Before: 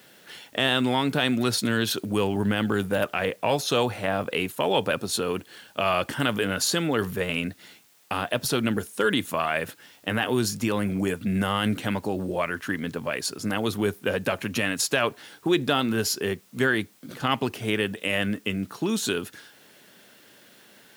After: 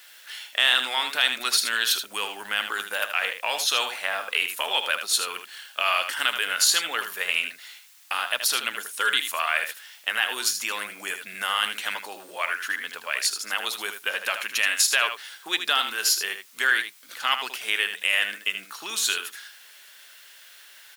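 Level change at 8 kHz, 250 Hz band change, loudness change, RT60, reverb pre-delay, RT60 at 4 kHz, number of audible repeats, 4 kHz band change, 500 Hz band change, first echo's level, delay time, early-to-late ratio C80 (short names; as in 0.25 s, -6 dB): +6.0 dB, -23.0 dB, +1.5 dB, none, none, none, 1, +6.0 dB, -11.5 dB, -8.5 dB, 78 ms, none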